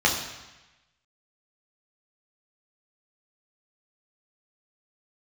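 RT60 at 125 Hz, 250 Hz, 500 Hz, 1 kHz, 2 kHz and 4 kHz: 1.2, 1.0, 1.0, 1.1, 1.2, 1.1 s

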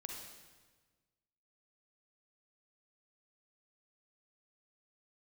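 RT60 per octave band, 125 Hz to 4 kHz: 1.8, 1.6, 1.5, 1.3, 1.3, 1.2 s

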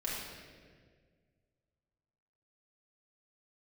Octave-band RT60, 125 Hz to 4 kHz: 2.4, 2.1, 2.0, 1.5, 1.6, 1.3 s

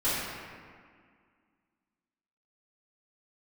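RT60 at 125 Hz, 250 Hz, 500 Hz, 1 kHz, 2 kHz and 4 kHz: 1.9, 2.5, 1.9, 2.0, 1.9, 1.2 s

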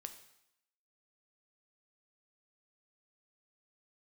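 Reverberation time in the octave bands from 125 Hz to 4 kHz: 0.70, 0.80, 0.75, 0.80, 0.80, 0.80 s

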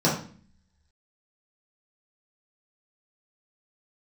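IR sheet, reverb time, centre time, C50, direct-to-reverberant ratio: 0.45 s, 33 ms, 5.5 dB, -7.0 dB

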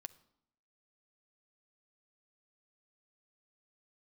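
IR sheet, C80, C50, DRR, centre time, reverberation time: 21.5 dB, 18.5 dB, 11.5 dB, 3 ms, 0.75 s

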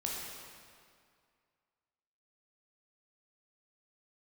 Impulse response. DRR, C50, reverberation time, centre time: -3.5 dB, -1.0 dB, 2.2 s, 0.118 s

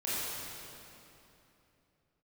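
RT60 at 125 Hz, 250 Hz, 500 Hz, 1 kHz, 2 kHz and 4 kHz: 3.7, 3.4, 3.1, 2.9, 2.6, 2.4 s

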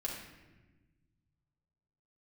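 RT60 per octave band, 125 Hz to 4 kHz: 2.7, 1.9, 1.4, 1.1, 1.2, 0.85 s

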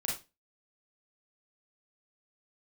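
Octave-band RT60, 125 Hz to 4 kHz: 0.30, 0.30, 0.25, 0.25, 0.25, 0.25 s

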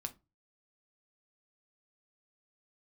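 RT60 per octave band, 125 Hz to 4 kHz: 0.45, 0.35, 0.30, 0.25, 0.20, 0.15 s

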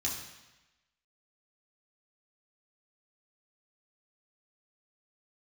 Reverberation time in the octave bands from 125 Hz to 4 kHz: 1.0, 1.0, 1.0, 1.1, 1.1, 1.1 s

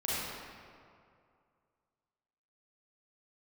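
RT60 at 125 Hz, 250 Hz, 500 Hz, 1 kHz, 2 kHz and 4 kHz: 2.5, 2.2, 2.3, 2.3, 1.8, 1.3 s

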